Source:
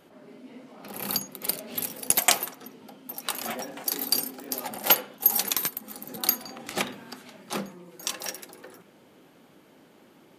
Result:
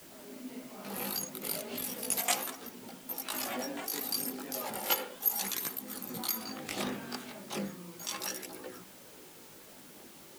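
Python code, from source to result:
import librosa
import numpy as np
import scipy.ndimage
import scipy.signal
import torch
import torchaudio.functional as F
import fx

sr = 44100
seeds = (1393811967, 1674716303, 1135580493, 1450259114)

p1 = fx.over_compress(x, sr, threshold_db=-35.0, ratio=-0.5)
p2 = x + (p1 * 10.0 ** (-0.5 / 20.0))
p3 = fx.chorus_voices(p2, sr, voices=2, hz=0.35, base_ms=18, depth_ms=2.5, mix_pct=55)
p4 = fx.dmg_noise_colour(p3, sr, seeds[0], colour='white', level_db=-49.0)
y = p4 * 10.0 ** (-6.0 / 20.0)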